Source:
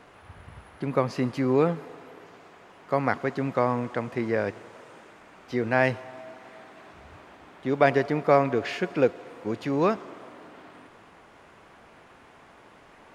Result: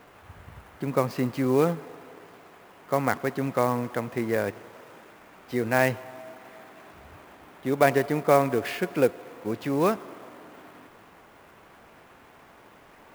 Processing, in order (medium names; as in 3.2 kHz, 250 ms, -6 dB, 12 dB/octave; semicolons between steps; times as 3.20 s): sampling jitter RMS 0.021 ms